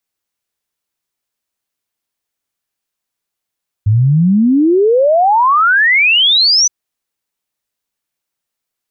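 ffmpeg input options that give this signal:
-f lavfi -i "aevalsrc='0.447*clip(min(t,2.82-t)/0.01,0,1)*sin(2*PI*100*2.82/log(6100/100)*(exp(log(6100/100)*t/2.82)-1))':d=2.82:s=44100"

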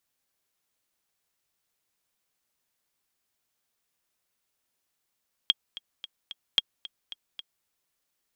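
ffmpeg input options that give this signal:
-f lavfi -i "aevalsrc='pow(10,(-7.5-18*gte(mod(t,4*60/222),60/222))/20)*sin(2*PI*3260*mod(t,60/222))*exp(-6.91*mod(t,60/222)/0.03)':d=2.16:s=44100"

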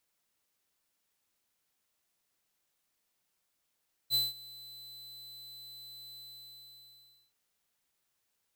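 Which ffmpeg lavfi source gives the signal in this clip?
-f lavfi -i "aevalsrc='0.0447*(2*lt(mod(4020*t,1),0.5)-1)':d=3.23:s=44100,afade=t=in:d=0.045,afade=t=out:st=0.045:d=0.184:silence=0.0794,afade=t=out:st=2.07:d=1.16"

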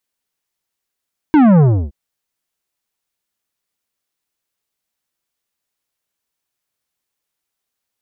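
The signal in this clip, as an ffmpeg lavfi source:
-f lavfi -i "aevalsrc='0.422*clip((0.57-t)/0.31,0,1)*tanh(3.98*sin(2*PI*320*0.57/log(65/320)*(exp(log(65/320)*t/0.57)-1)))/tanh(3.98)':d=0.57:s=44100"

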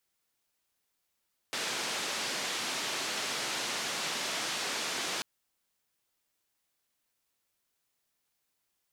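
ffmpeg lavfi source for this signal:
-f lavfi -i "anoisesrc=c=white:d=3.69:r=44100:seed=1,highpass=f=200,lowpass=f=5500,volume=-23.8dB"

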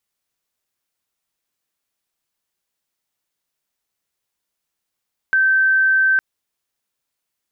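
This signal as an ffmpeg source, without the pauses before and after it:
-f lavfi -i "aevalsrc='0.251*sin(2*PI*1550*t)':d=0.86:s=44100"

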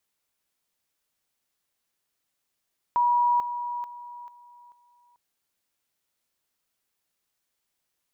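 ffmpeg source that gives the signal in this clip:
-f lavfi -i "aevalsrc='pow(10,(-18.5-10*floor(t/0.44))/20)*sin(2*PI*965*t)':d=2.2:s=44100"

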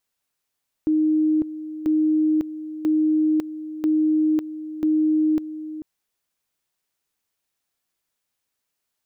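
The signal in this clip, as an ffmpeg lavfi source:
-f lavfi -i "aevalsrc='pow(10,(-16-13.5*gte(mod(t,0.99),0.55))/20)*sin(2*PI*310*t)':d=4.95:s=44100"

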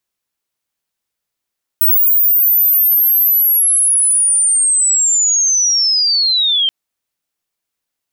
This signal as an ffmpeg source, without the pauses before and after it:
-f lavfi -i "aevalsrc='pow(10,(-8-3*t/4.88)/20)*sin(2*PI*(16000*t-12900*t*t/(2*4.88)))':d=4.88:s=44100"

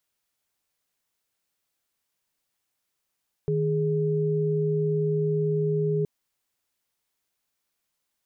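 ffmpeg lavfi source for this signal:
-f lavfi -i "aevalsrc='0.0596*(sin(2*PI*155.56*t)+sin(2*PI*415.3*t))':d=2.57:s=44100"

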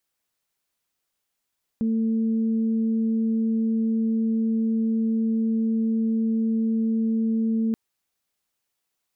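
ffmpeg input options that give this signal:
-f lavfi -i "aevalsrc='0.1*sin(2*PI*224*t)+0.015*sin(2*PI*448*t)':d=5.93:s=44100"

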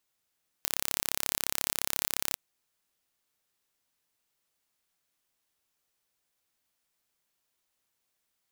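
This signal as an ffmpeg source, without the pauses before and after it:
-f lavfi -i "aevalsrc='0.794*eq(mod(n,1286),0)':d=1.72:s=44100"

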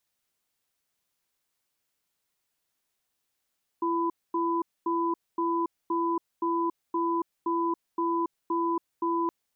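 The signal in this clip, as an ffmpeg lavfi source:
-f lavfi -i "aevalsrc='0.0447*(sin(2*PI*337*t)+sin(2*PI*1000*t))*clip(min(mod(t,0.52),0.28-mod(t,0.52))/0.005,0,1)':d=5.47:s=44100"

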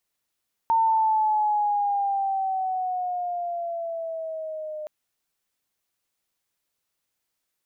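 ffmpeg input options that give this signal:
-f lavfi -i "aevalsrc='pow(10,(-17-14*t/4.17)/20)*sin(2*PI*910*4.17/(-7*log(2)/12)*(exp(-7*log(2)/12*t/4.17)-1))':d=4.17:s=44100"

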